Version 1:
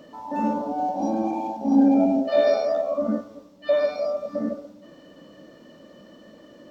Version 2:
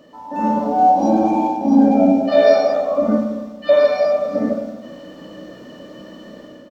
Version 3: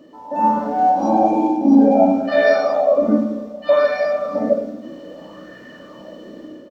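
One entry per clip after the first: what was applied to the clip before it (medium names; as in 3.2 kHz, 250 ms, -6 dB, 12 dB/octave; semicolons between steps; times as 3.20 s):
doubling 16 ms -12.5 dB; level rider gain up to 10 dB; spring tank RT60 1.4 s, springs 32/55 ms, chirp 30 ms, DRR 4.5 dB; trim -1 dB
sweeping bell 0.62 Hz 310–1800 Hz +11 dB; trim -3.5 dB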